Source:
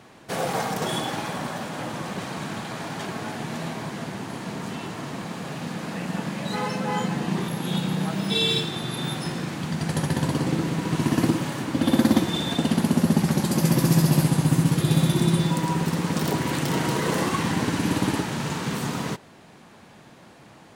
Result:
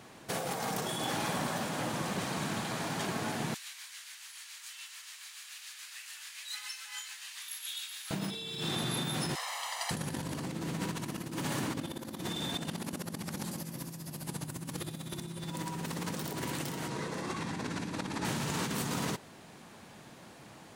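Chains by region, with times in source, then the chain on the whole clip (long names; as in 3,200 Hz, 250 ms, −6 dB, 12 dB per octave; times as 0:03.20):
0:03.54–0:08.11: Bessel high-pass filter 2,600 Hz, order 4 + amplitude tremolo 7 Hz, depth 39%
0:09.35–0:09.91: Chebyshev high-pass filter 480 Hz, order 10 + comb filter 1 ms, depth 75%
0:16.88–0:18.25: high-frequency loss of the air 56 metres + notch filter 3,000 Hz, Q 11
whole clip: high-shelf EQ 5,400 Hz +7 dB; compressor whose output falls as the input rises −29 dBFS, ratio −1; level −8 dB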